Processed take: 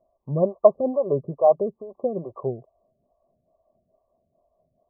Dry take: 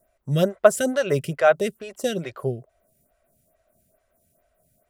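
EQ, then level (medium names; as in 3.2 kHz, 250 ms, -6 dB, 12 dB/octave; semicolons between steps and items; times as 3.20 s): brick-wall FIR low-pass 1.2 kHz; bass shelf 220 Hz -8.5 dB; +1.5 dB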